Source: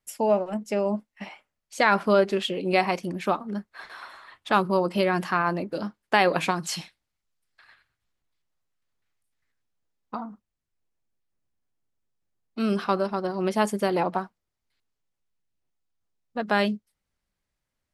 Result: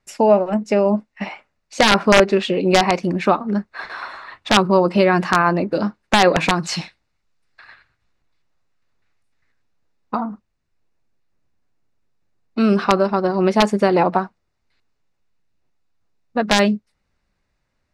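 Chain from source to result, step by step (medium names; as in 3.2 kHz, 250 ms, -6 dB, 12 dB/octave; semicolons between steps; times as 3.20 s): band-stop 3.2 kHz, Q 7.8; in parallel at -2.5 dB: compression 8:1, threshold -29 dBFS, peak gain reduction 14.5 dB; on the sum: integer overflow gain 8.5 dB; distance through air 96 m; trim +7 dB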